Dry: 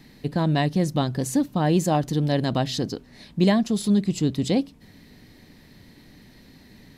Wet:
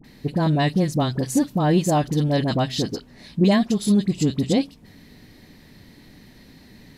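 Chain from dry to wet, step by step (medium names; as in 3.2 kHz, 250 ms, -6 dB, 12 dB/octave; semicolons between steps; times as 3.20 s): phase dispersion highs, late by 44 ms, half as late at 1.1 kHz; trim +2 dB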